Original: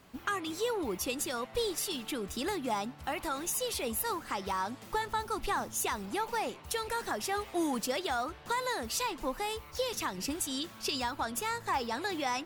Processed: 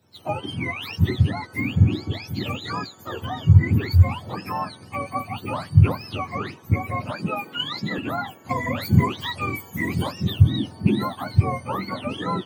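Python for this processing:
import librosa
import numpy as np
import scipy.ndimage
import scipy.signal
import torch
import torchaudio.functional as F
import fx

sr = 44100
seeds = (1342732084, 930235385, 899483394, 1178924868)

y = fx.octave_mirror(x, sr, pivot_hz=1000.0)
y = fx.highpass(y, sr, hz=160.0, slope=24, at=(7.12, 7.98))
y = fx.high_shelf(y, sr, hz=2800.0, db=9.0, at=(8.49, 10.11), fade=0.02)
y = fx.band_widen(y, sr, depth_pct=40)
y = y * 10.0 ** (7.5 / 20.0)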